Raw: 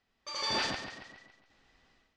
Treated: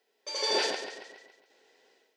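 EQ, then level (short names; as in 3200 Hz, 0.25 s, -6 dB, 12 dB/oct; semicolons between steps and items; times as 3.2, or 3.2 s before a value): resonant high-pass 430 Hz, resonance Q 4.9; Butterworth band-stop 1200 Hz, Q 5.5; high shelf 6400 Hz +11.5 dB; 0.0 dB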